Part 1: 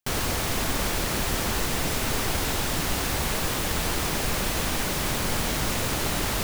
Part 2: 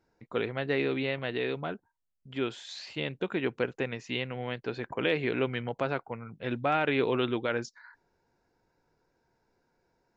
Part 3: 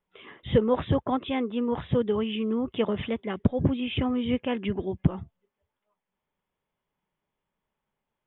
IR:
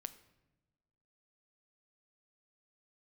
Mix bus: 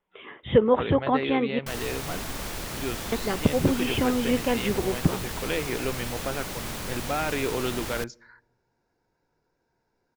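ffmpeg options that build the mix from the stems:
-filter_complex "[0:a]adelay=1600,volume=-8.5dB,asplit=2[link_01][link_02];[link_02]volume=-15dB[link_03];[1:a]adelay=450,volume=-3dB,asplit=2[link_04][link_05];[link_05]volume=-9dB[link_06];[2:a]bass=frequency=250:gain=-6,treble=frequency=4000:gain=-9,volume=2.5dB,asplit=3[link_07][link_08][link_09];[link_07]atrim=end=1.59,asetpts=PTS-STARTPTS,afade=type=out:start_time=1.586:duration=0.004:curve=hsin[link_10];[link_08]atrim=start=1.59:end=3.12,asetpts=PTS-STARTPTS,volume=0[link_11];[link_09]atrim=start=3.12,asetpts=PTS-STARTPTS,afade=type=in:duration=0.004:curve=hsin[link_12];[link_10][link_11][link_12]concat=n=3:v=0:a=1,asplit=2[link_13][link_14];[link_14]volume=-7.5dB[link_15];[3:a]atrim=start_sample=2205[link_16];[link_03][link_06][link_15]amix=inputs=3:normalize=0[link_17];[link_17][link_16]afir=irnorm=-1:irlink=0[link_18];[link_01][link_04][link_13][link_18]amix=inputs=4:normalize=0"

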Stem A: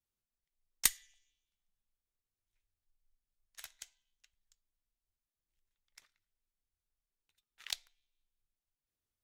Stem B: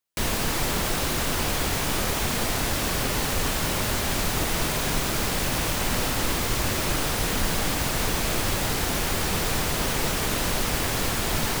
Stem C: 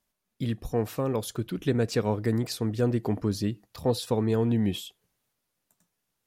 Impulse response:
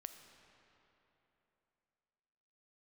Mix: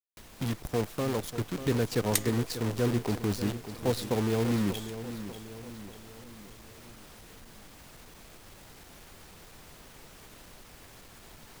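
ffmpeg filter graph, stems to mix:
-filter_complex "[0:a]adelay=1300,volume=0dB[link_01];[1:a]acompressor=threshold=-28dB:ratio=6,aeval=exprs='clip(val(0),-1,0.0376)':channel_layout=same,volume=-19dB[link_02];[2:a]acrusher=bits=6:dc=4:mix=0:aa=0.000001,volume=-3dB,asplit=3[link_03][link_04][link_05];[link_04]volume=-11.5dB[link_06];[link_05]apad=whole_len=464589[link_07];[link_01][link_07]sidechaingate=range=-33dB:threshold=-49dB:ratio=16:detection=peak[link_08];[link_06]aecho=0:1:591|1182|1773|2364|2955|3546|4137:1|0.5|0.25|0.125|0.0625|0.0312|0.0156[link_09];[link_08][link_02][link_03][link_09]amix=inputs=4:normalize=0"

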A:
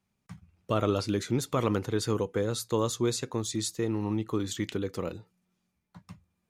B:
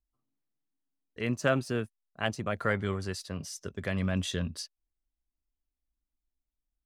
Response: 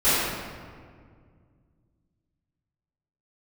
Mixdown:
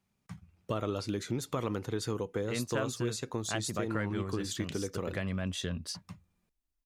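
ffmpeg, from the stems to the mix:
-filter_complex "[0:a]volume=0dB[link_01];[1:a]adelay=1300,volume=0.5dB[link_02];[link_01][link_02]amix=inputs=2:normalize=0,acompressor=threshold=-32dB:ratio=2.5"

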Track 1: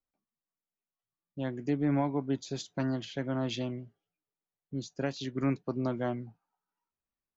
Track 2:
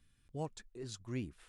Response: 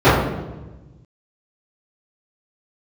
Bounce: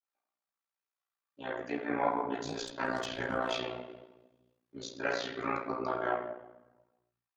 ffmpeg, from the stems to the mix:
-filter_complex "[0:a]highpass=1300,volume=-2dB,asplit=3[link_01][link_02][link_03];[link_02]volume=-15.5dB[link_04];[1:a]equalizer=frequency=5600:width_type=o:width=0.88:gain=9.5,asoftclip=type=tanh:threshold=-34.5dB,adelay=2100,volume=-2dB[link_05];[link_03]apad=whole_len=158155[link_06];[link_05][link_06]sidechaingate=range=-33dB:threshold=-51dB:ratio=16:detection=peak[link_07];[2:a]atrim=start_sample=2205[link_08];[link_04][link_08]afir=irnorm=-1:irlink=0[link_09];[link_01][link_07][link_09]amix=inputs=3:normalize=0,dynaudnorm=framelen=230:gausssize=13:maxgain=4.5dB,tremolo=f=59:d=0.824,adynamicequalizer=threshold=0.00501:dfrequency=1600:dqfactor=0.7:tfrequency=1600:tqfactor=0.7:attack=5:release=100:ratio=0.375:range=1.5:mode=cutabove:tftype=highshelf"

